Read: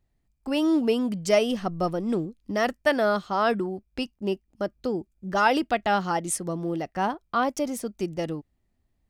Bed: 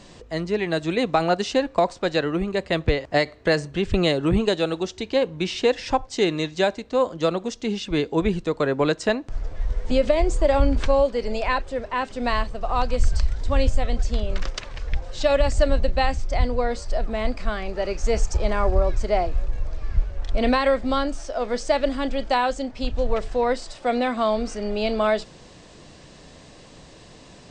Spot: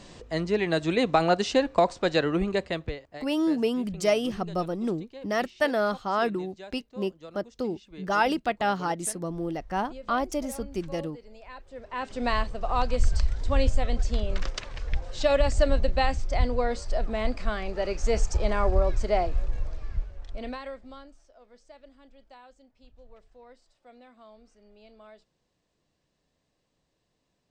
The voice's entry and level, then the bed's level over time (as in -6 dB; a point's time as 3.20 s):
2.75 s, -2.5 dB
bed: 2.55 s -1.5 dB
3.21 s -23 dB
11.48 s -23 dB
12.14 s -3 dB
19.59 s -3 dB
21.44 s -30 dB